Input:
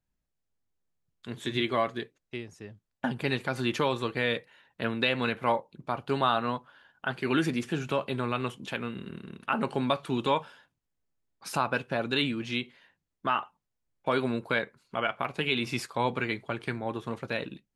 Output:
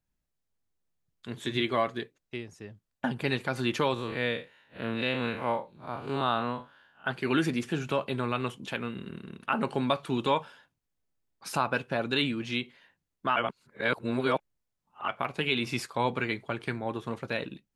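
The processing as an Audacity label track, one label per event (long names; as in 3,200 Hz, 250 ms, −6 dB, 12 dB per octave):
3.940000	7.050000	spectrum smeared in time width 111 ms
13.360000	15.080000	reverse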